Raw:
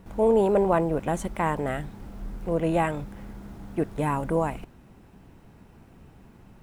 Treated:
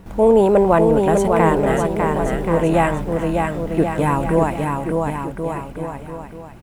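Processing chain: bouncing-ball echo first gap 600 ms, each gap 0.8×, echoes 5; trim +7.5 dB

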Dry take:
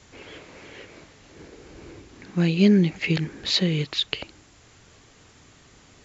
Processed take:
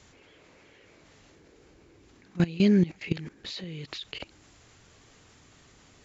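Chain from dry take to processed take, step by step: level held to a coarse grid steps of 19 dB

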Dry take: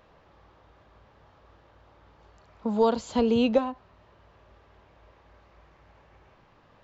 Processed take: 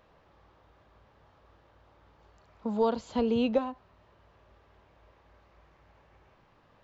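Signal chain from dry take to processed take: 2.77–3.61 s: distance through air 72 m; trim -4 dB

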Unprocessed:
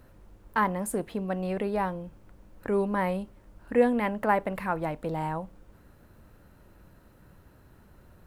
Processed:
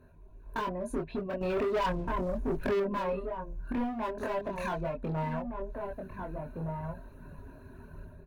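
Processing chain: 4.18–4.81 s: zero-crossing glitches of -27 dBFS; reverb removal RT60 1.4 s; rippled EQ curve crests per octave 1.5, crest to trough 13 dB; low-pass that closes with the level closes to 1 kHz, closed at -18 dBFS; level rider gain up to 12 dB; hard clipper -19.5 dBFS, distortion -5 dB; peaking EQ 6.6 kHz -13.5 dB 2.6 oct; echo from a far wall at 260 m, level -9 dB; compression, threshold -28 dBFS, peak gain reduction 8 dB; chorus voices 4, 0.42 Hz, delay 24 ms, depth 2.1 ms; 1.41–2.80 s: waveshaping leveller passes 2

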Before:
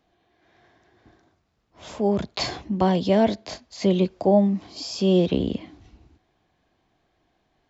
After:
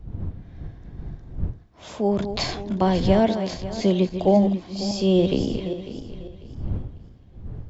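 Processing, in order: backward echo that repeats 273 ms, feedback 52%, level -9 dB; wind noise 100 Hz -34 dBFS

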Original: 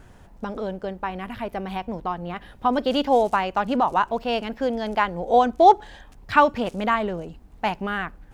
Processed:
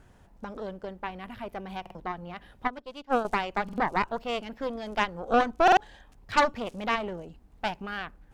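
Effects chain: Chebyshev shaper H 6 -13 dB, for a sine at -2 dBFS; buffer glitch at 1.81/3.64/5.63 s, samples 2048, times 2; 2.67–3.25 s: upward expansion 2.5:1, over -27 dBFS; trim -7.5 dB

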